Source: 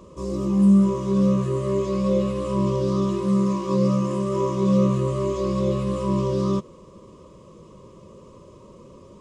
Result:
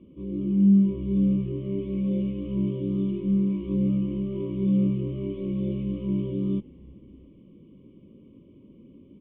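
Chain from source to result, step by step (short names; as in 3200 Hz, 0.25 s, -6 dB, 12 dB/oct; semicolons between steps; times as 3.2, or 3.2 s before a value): added harmonics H 4 -34 dB, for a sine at -8 dBFS; vocal tract filter i; frequency-shifting echo 0.336 s, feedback 47%, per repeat -130 Hz, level -22 dB; gain +5 dB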